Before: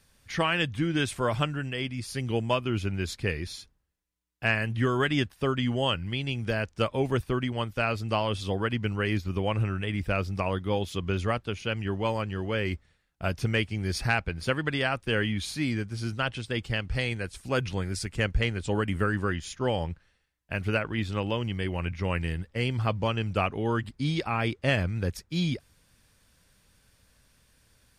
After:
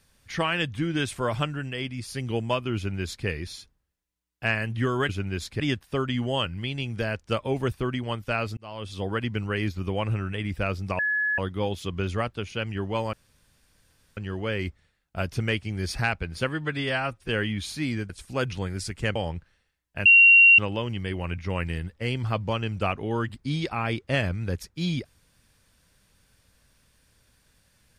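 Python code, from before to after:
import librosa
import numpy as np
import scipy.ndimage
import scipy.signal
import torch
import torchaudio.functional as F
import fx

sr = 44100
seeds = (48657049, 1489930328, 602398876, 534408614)

y = fx.edit(x, sr, fx.duplicate(start_s=2.76, length_s=0.51, to_s=5.09),
    fx.fade_in_span(start_s=8.06, length_s=0.54),
    fx.insert_tone(at_s=10.48, length_s=0.39, hz=1700.0, db=-22.0),
    fx.insert_room_tone(at_s=12.23, length_s=1.04),
    fx.stretch_span(start_s=14.55, length_s=0.53, factor=1.5),
    fx.cut(start_s=15.89, length_s=1.36),
    fx.cut(start_s=18.31, length_s=1.39),
    fx.bleep(start_s=20.6, length_s=0.53, hz=2750.0, db=-10.5), tone=tone)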